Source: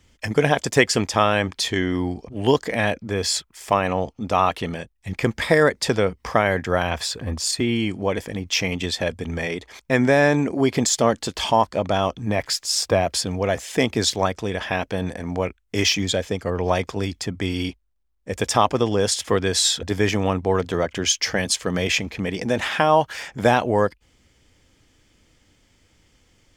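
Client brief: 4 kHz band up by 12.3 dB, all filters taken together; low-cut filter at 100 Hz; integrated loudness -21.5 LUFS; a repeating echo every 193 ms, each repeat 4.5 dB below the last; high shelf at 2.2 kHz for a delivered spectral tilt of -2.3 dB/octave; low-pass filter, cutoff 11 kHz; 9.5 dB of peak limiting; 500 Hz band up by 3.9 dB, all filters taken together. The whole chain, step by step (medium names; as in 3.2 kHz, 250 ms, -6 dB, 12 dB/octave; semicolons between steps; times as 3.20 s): high-pass 100 Hz; low-pass 11 kHz; peaking EQ 500 Hz +4 dB; treble shelf 2.2 kHz +9 dB; peaking EQ 4 kHz +7 dB; peak limiter -5 dBFS; feedback delay 193 ms, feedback 60%, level -4.5 dB; trim -5.5 dB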